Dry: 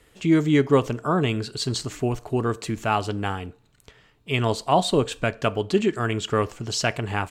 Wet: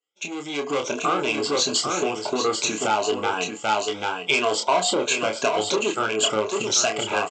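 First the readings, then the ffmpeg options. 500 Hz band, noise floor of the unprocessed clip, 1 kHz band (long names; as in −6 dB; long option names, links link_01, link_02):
+0.5 dB, −60 dBFS, +3.0 dB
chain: -filter_complex "[0:a]afftfilt=real='re*pow(10,12/40*sin(2*PI*(1.5*log(max(b,1)*sr/1024/100)/log(2)-(2.9)*(pts-256)/sr)))':imag='im*pow(10,12/40*sin(2*PI*(1.5*log(max(b,1)*sr/1024/100)/log(2)-(2.9)*(pts-256)/sr)))':win_size=1024:overlap=0.75,aresample=16000,asoftclip=type=tanh:threshold=-18dB,aresample=44100,asuperstop=centerf=1800:order=12:qfactor=7.7,highshelf=frequency=6200:gain=4,aecho=1:1:789:0.398,acompressor=threshold=-28dB:ratio=16,agate=range=-33dB:threshold=-36dB:ratio=3:detection=peak,dynaudnorm=framelen=190:gausssize=7:maxgain=11.5dB,aexciter=amount=2.5:drive=1:freq=2500,highpass=420,asplit=2[link_01][link_02];[link_02]adelay=28,volume=-5dB[link_03];[link_01][link_03]amix=inputs=2:normalize=0,adynamicequalizer=threshold=0.02:dfrequency=1800:dqfactor=0.7:tfrequency=1800:tqfactor=0.7:attack=5:release=100:ratio=0.375:range=3:mode=cutabove:tftype=highshelf"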